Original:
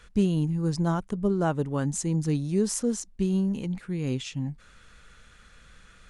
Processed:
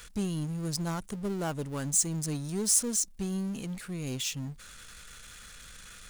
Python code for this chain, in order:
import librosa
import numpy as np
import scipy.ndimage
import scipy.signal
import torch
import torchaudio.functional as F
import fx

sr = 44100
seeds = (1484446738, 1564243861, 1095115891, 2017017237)

y = fx.power_curve(x, sr, exponent=0.7)
y = scipy.signal.lfilter([1.0, -0.8], [1.0], y)
y = F.gain(torch.from_numpy(y), 3.5).numpy()